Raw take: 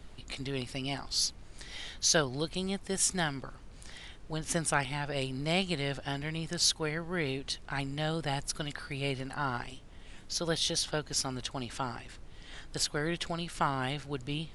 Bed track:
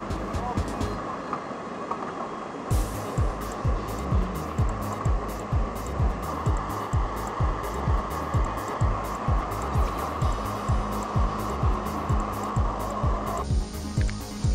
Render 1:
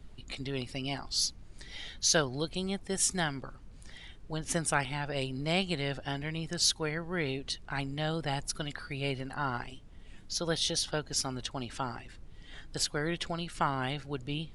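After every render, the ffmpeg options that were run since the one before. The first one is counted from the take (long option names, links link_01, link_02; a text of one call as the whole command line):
ffmpeg -i in.wav -af "afftdn=noise_reduction=7:noise_floor=-50" out.wav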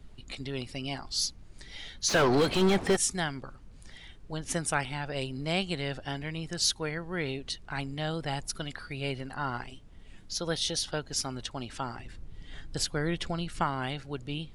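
ffmpeg -i in.wav -filter_complex "[0:a]asplit=3[link_01][link_02][link_03];[link_01]afade=type=out:start_time=2.08:duration=0.02[link_04];[link_02]asplit=2[link_05][link_06];[link_06]highpass=frequency=720:poles=1,volume=37dB,asoftclip=type=tanh:threshold=-13.5dB[link_07];[link_05][link_07]amix=inputs=2:normalize=0,lowpass=frequency=1100:poles=1,volume=-6dB,afade=type=in:start_time=2.08:duration=0.02,afade=type=out:start_time=2.95:duration=0.02[link_08];[link_03]afade=type=in:start_time=2.95:duration=0.02[link_09];[link_04][link_08][link_09]amix=inputs=3:normalize=0,asettb=1/sr,asplit=3[link_10][link_11][link_12];[link_10]atrim=end=11.994[link_13];[link_11]atrim=start=11.99:end=13.64,asetpts=PTS-STARTPTS,afade=type=in:duration=0.004:curve=qsin,afade=type=out:start_time=1.646:duration=0.004:curve=qsin,lowshelf=frequency=280:gain=6[link_14];[link_12]atrim=start=13.636[link_15];[link_13][link_14]acrossfade=duration=0.004:curve1=hsin:curve2=qsin[link_16];[link_16][link_15]acrossfade=duration=0.004:curve1=qsin:curve2=hsin" out.wav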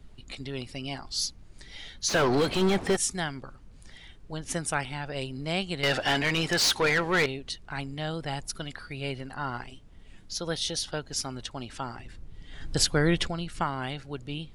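ffmpeg -i in.wav -filter_complex "[0:a]asettb=1/sr,asplit=3[link_01][link_02][link_03];[link_01]atrim=end=5.834[link_04];[link_02]atrim=start=5.83:end=7.26,asetpts=PTS-STARTPTS,afade=type=in:duration=0.004:curve=qsin,afade=type=out:start_time=1.426:duration=0.004:curve=qsin,asplit=2[link_05][link_06];[link_06]highpass=frequency=720:poles=1,volume=27dB,asoftclip=type=tanh:threshold=-14.5dB[link_07];[link_05][link_07]amix=inputs=2:normalize=0,lowpass=frequency=4400:poles=1,volume=-6dB[link_08];[link_03]atrim=start=7.256[link_09];[link_04][link_08]acrossfade=duration=0.004:curve1=hsin:curve2=qsin[link_10];[link_10][link_09]acrossfade=duration=0.004:curve1=qsin:curve2=hsin,asplit=3[link_11][link_12][link_13];[link_11]afade=type=out:start_time=12.6:duration=0.02[link_14];[link_12]acontrast=81,afade=type=in:start_time=12.6:duration=0.02,afade=type=out:start_time=13.26:duration=0.02[link_15];[link_13]afade=type=in:start_time=13.26:duration=0.02[link_16];[link_14][link_15][link_16]amix=inputs=3:normalize=0" out.wav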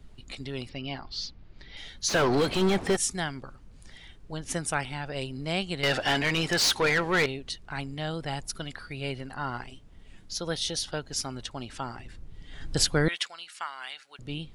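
ffmpeg -i in.wav -filter_complex "[0:a]asettb=1/sr,asplit=3[link_01][link_02][link_03];[link_01]atrim=end=0.694[link_04];[link_02]atrim=start=0.69:end=1.77,asetpts=PTS-STARTPTS,afade=type=in:duration=0.004:curve=qsin,afade=type=out:start_time=1.076:duration=0.004:curve=qsin,lowpass=frequency=4400:width=0.5412,lowpass=frequency=4400:width=1.3066[link_05];[link_03]atrim=start=1.766[link_06];[link_04][link_05]acrossfade=duration=0.004:curve1=hsin:curve2=qsin[link_07];[link_07][link_06]acrossfade=duration=0.004:curve1=qsin:curve2=hsin,asettb=1/sr,asplit=3[link_08][link_09][link_10];[link_08]atrim=end=13.084[link_11];[link_09]atrim=start=13.08:end=14.19,asetpts=PTS-STARTPTS,afade=type=in:duration=0.004:curve=qsin,afade=type=out:start_time=1.106:duration=0.004:curve=qsin,highpass=1400[link_12];[link_10]atrim=start=14.186[link_13];[link_11][link_12]acrossfade=duration=0.004:curve1=hsin:curve2=qsin[link_14];[link_14][link_13]acrossfade=duration=0.004:curve1=qsin:curve2=hsin" out.wav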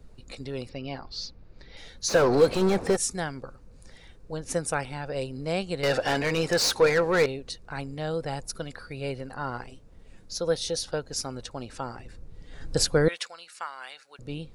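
ffmpeg -i in.wav -af "equalizer=frequency=500:width_type=o:width=0.33:gain=10,equalizer=frequency=2000:width_type=o:width=0.33:gain=-4,equalizer=frequency=3150:width_type=o:width=0.33:gain=-9" out.wav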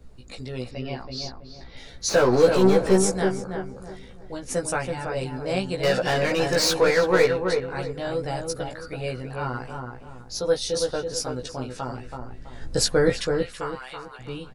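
ffmpeg -i in.wav -filter_complex "[0:a]asplit=2[link_01][link_02];[link_02]adelay=16,volume=-2dB[link_03];[link_01][link_03]amix=inputs=2:normalize=0,asplit=2[link_04][link_05];[link_05]adelay=328,lowpass=frequency=1400:poles=1,volume=-4dB,asplit=2[link_06][link_07];[link_07]adelay=328,lowpass=frequency=1400:poles=1,volume=0.36,asplit=2[link_08][link_09];[link_09]adelay=328,lowpass=frequency=1400:poles=1,volume=0.36,asplit=2[link_10][link_11];[link_11]adelay=328,lowpass=frequency=1400:poles=1,volume=0.36,asplit=2[link_12][link_13];[link_13]adelay=328,lowpass=frequency=1400:poles=1,volume=0.36[link_14];[link_04][link_06][link_08][link_10][link_12][link_14]amix=inputs=6:normalize=0" out.wav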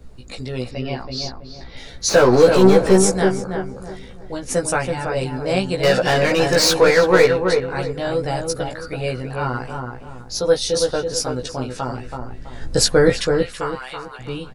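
ffmpeg -i in.wav -af "volume=6dB,alimiter=limit=-2dB:level=0:latency=1" out.wav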